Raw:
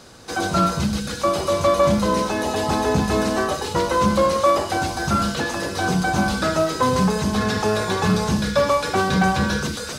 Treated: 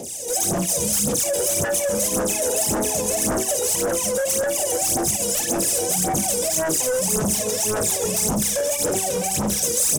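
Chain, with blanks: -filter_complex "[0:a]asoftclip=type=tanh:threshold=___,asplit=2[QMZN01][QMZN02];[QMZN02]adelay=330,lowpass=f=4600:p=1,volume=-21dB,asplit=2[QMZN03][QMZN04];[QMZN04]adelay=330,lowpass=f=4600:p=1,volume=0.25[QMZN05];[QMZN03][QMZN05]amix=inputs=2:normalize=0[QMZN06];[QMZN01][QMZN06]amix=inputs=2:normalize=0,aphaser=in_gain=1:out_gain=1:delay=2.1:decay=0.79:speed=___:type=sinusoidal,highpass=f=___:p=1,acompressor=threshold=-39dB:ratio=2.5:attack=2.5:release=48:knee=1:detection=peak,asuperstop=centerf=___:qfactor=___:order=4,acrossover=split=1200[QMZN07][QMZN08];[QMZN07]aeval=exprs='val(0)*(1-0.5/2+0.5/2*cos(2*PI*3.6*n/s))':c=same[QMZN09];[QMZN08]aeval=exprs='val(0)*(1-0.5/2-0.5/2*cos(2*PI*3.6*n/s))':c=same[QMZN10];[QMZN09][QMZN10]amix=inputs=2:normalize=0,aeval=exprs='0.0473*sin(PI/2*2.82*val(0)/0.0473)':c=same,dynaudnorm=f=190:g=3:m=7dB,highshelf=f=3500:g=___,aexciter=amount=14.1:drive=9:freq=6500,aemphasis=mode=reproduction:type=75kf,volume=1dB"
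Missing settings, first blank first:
-13dB, 1.8, 810, 1300, 0.69, -7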